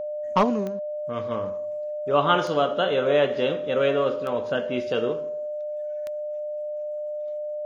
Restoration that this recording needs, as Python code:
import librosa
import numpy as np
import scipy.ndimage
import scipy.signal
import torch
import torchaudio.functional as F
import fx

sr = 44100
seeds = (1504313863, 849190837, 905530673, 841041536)

y = fx.fix_declick_ar(x, sr, threshold=10.0)
y = fx.notch(y, sr, hz=600.0, q=30.0)